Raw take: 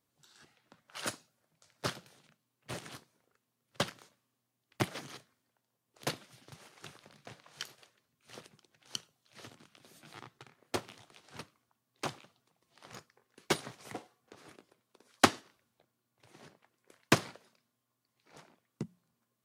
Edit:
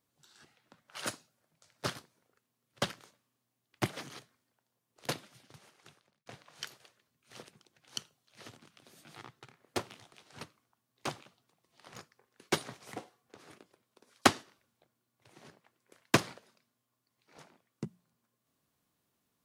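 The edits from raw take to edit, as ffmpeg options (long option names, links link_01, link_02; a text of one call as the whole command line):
ffmpeg -i in.wav -filter_complex "[0:a]asplit=3[link_01][link_02][link_03];[link_01]atrim=end=1.962[link_04];[link_02]atrim=start=2.938:end=7.24,asetpts=PTS-STARTPTS,afade=type=out:start_time=3.262:duration=1.04[link_05];[link_03]atrim=start=7.24,asetpts=PTS-STARTPTS,afade=type=in:duration=0.004:curve=hsin[link_06];[link_05][link_06]concat=n=2:v=0:a=1[link_07];[link_04][link_07]acrossfade=duration=0.004:curve1=hsin:curve2=hsin" out.wav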